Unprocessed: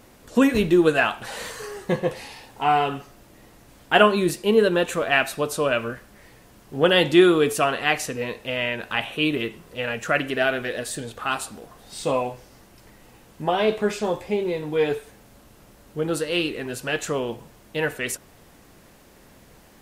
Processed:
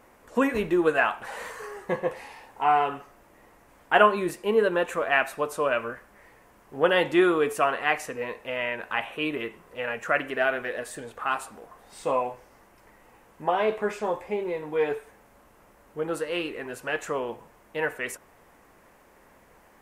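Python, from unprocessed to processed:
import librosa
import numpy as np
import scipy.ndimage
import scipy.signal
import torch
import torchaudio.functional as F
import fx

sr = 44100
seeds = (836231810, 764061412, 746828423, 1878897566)

y = fx.graphic_eq_10(x, sr, hz=(125, 500, 1000, 2000, 4000), db=(-4, 4, 8, 6, -6))
y = F.gain(torch.from_numpy(y), -8.5).numpy()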